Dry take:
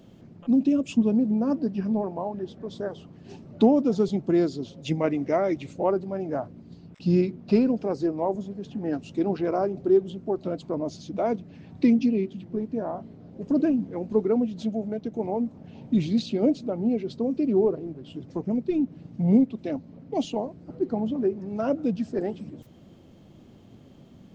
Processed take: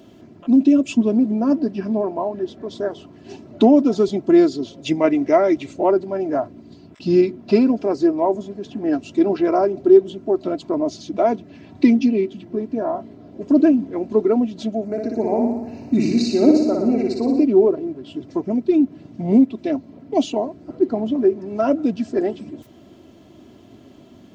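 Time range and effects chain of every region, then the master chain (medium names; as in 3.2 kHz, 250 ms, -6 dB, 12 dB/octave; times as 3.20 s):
14.85–17.44 s: Butterworth band-stop 3.3 kHz, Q 2.4 + treble shelf 6 kHz +7 dB + flutter echo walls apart 10.1 m, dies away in 0.93 s
whole clip: high-pass 150 Hz 6 dB/octave; comb 3 ms, depth 55%; trim +6.5 dB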